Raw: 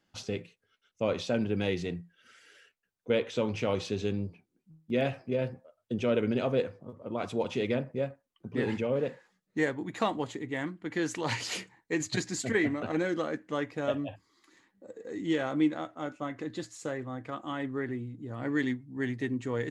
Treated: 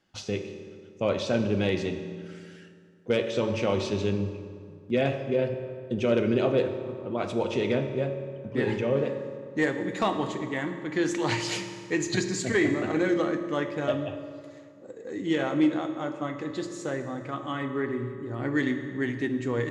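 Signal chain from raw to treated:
hard clipping −18 dBFS, distortion −32 dB
low-pass filter 9,100 Hz 12 dB per octave
convolution reverb RT60 2.2 s, pre-delay 3 ms, DRR 6 dB
level +3 dB

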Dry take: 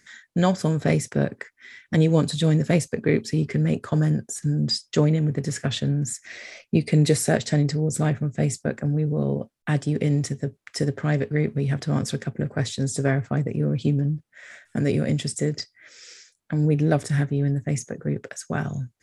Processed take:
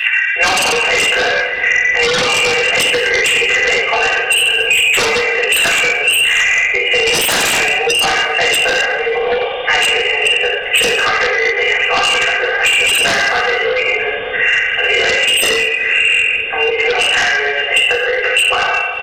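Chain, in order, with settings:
hearing-aid frequency compression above 2,000 Hz 4 to 1
Butterworth high-pass 500 Hz 48 dB per octave
spectral tilt +4 dB per octave
comb filter 2.5 ms, depth 67%
volume swells 117 ms
in parallel at +2 dB: brickwall limiter −21 dBFS, peak gain reduction 10.5 dB
on the sum: gain into a clipping stage and back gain 13 dB
reverb whose tail is shaped and stops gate 300 ms falling, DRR −7.5 dB
sine wavefolder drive 15 dB, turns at 1 dBFS
on a send: feedback echo with a low-pass in the loop 183 ms, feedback 85%, low-pass 2,400 Hz, level −19 dB
on the sum: multiband upward and downward compressor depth 100%
level −11 dB

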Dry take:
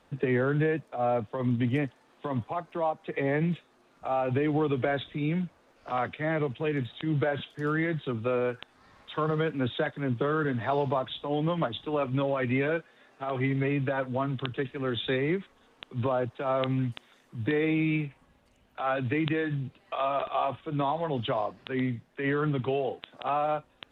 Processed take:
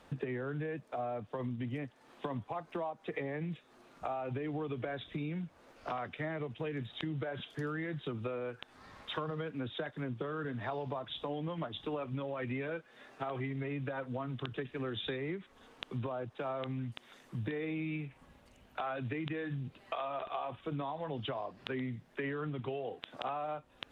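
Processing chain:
downward compressor 10 to 1, threshold −38 dBFS, peak gain reduction 16 dB
level +3 dB

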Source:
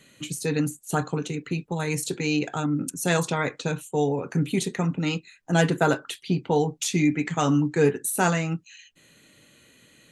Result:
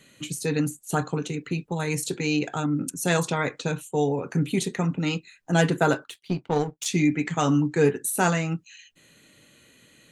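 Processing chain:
0:06.04–0:06.86: power curve on the samples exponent 1.4

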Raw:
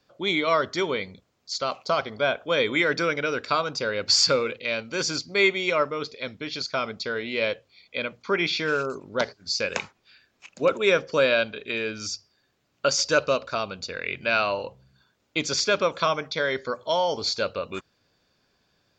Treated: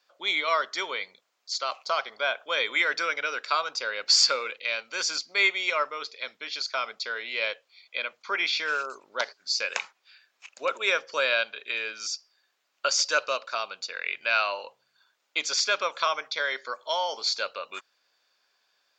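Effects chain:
high-pass filter 840 Hz 12 dB per octave

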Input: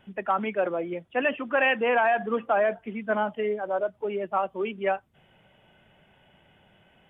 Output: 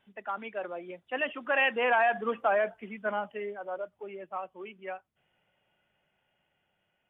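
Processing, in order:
source passing by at 0:02.22, 11 m/s, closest 9.2 metres
low-shelf EQ 460 Hz −8 dB

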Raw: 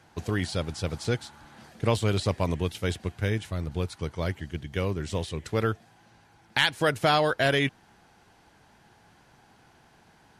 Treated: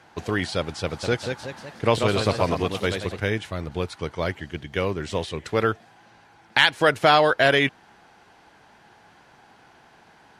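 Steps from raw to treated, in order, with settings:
high-shelf EQ 6,000 Hz −11 dB
0:00.83–0:03.20: delay with pitch and tempo change per echo 199 ms, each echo +1 semitone, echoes 3, each echo −6 dB
low-shelf EQ 230 Hz −11 dB
level +7.5 dB

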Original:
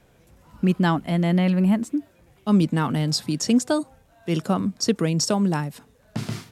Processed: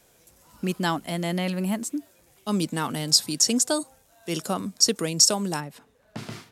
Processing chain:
bass and treble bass −8 dB, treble +13 dB, from 0:05.59 treble −3 dB
level −2.5 dB

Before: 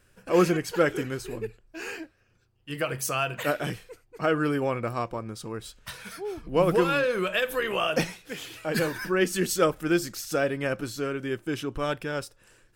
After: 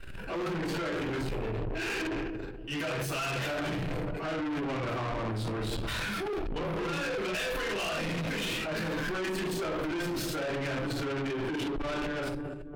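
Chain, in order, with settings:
fade-out on the ending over 2.52 s
rectangular room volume 48 cubic metres, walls mixed, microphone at 3 metres
brickwall limiter −8.5 dBFS, peak gain reduction 11.5 dB
on a send: feedback echo with a low-pass in the loop 284 ms, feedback 61%, low-pass 880 Hz, level −17 dB
on the sum: transient designer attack −5 dB, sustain +12 dB
reversed playback
downward compressor 6 to 1, threshold −22 dBFS, peak gain reduction 10 dB
reversed playback
high shelf with overshoot 4,600 Hz −8.5 dB, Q 1.5
soft clipping −30.5 dBFS, distortion −8 dB

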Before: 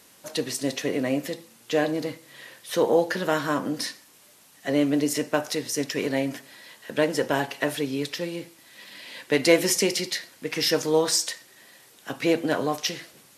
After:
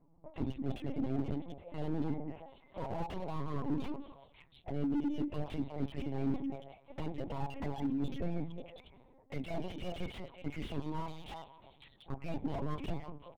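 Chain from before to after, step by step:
adaptive Wiener filter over 15 samples
low-pass that shuts in the quiet parts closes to 340 Hz, open at −22.5 dBFS
parametric band 100 Hz −6 dB 0.47 octaves
comb filter 7.3 ms, depth 75%
reversed playback
downward compressor 10 to 1, threshold −31 dBFS, peak gain reduction 19 dB
reversed playback
flanger swept by the level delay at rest 6.7 ms, full sweep at −33 dBFS
phaser with its sweep stopped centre 1,600 Hz, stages 6
on a send: echo through a band-pass that steps 181 ms, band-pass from 250 Hz, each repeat 1.4 octaves, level −5.5 dB
on the sum: linear-prediction vocoder at 8 kHz pitch kept
slew-rate limiting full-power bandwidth 3.9 Hz
level +7.5 dB

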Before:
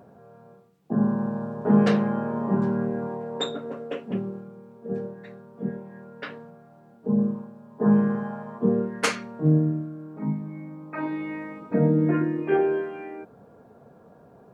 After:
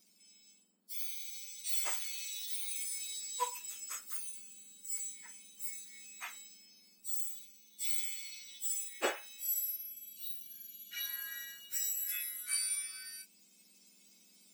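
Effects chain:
frequency axis turned over on the octave scale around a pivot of 1,900 Hz
speech leveller within 4 dB 2 s
gain on a spectral selection 0:09.92–0:10.88, 410–2,200 Hz −18 dB
level −7.5 dB

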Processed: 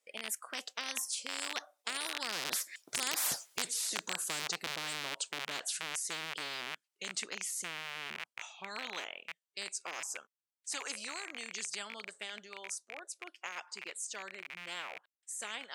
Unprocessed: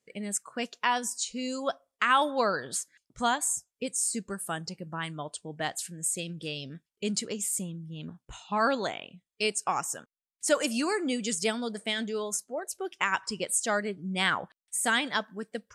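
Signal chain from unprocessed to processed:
loose part that buzzes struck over −48 dBFS, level −22 dBFS
source passing by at 0:03.32, 25 m/s, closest 1.3 metres
high-pass filter 570 Hz 12 dB per octave
every bin compressed towards the loudest bin 10 to 1
level +7 dB

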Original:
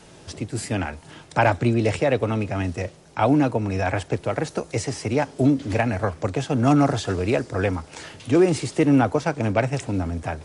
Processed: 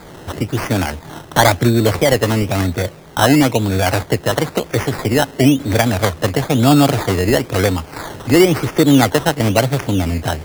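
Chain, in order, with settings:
in parallel at +0.5 dB: downward compressor, threshold −28 dBFS, peak gain reduction 14.5 dB
on the sum: sample-and-hold swept by an LFO 15×, swing 60% 1 Hz
level +4.5 dB

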